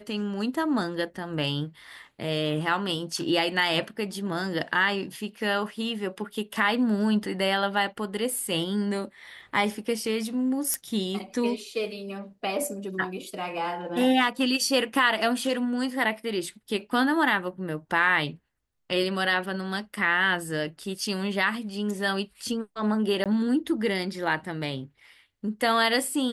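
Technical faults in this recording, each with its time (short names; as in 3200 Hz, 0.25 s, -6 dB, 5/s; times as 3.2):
10.74 pop -12 dBFS
23.24–23.26 gap 17 ms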